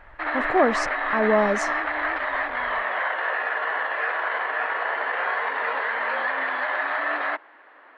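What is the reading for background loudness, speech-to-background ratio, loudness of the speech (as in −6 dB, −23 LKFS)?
−25.0 LKFS, 1.0 dB, −24.0 LKFS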